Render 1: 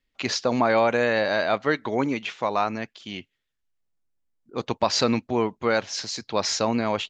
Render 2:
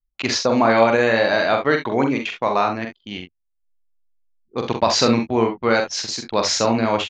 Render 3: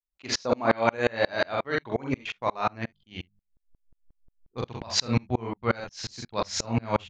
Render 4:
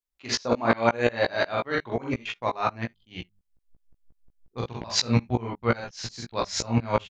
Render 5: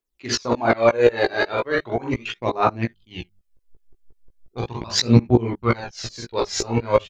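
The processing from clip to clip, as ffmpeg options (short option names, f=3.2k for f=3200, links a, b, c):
-filter_complex "[0:a]anlmdn=6.31,asplit=2[a][b];[b]aecho=0:1:44|66|78:0.531|0.316|0.126[c];[a][c]amix=inputs=2:normalize=0,volume=4dB"
-af "bandreject=f=50:t=h:w=6,bandreject=f=100:t=h:w=6,bandreject=f=150:t=h:w=6,bandreject=f=200:t=h:w=6,asubboost=boost=5:cutoff=130,aeval=exprs='val(0)*pow(10,-33*if(lt(mod(-5.6*n/s,1),2*abs(-5.6)/1000),1-mod(-5.6*n/s,1)/(2*abs(-5.6)/1000),(mod(-5.6*n/s,1)-2*abs(-5.6)/1000)/(1-2*abs(-5.6)/1000))/20)':c=same"
-filter_complex "[0:a]asplit=2[a][b];[b]adelay=17,volume=-5dB[c];[a][c]amix=inputs=2:normalize=0"
-filter_complex "[0:a]equalizer=f=360:w=2:g=8,asplit=2[a][b];[b]asoftclip=type=tanh:threshold=-14dB,volume=-6.5dB[c];[a][c]amix=inputs=2:normalize=0,aphaser=in_gain=1:out_gain=1:delay=2.6:decay=0.52:speed=0.38:type=triangular,volume=-1dB"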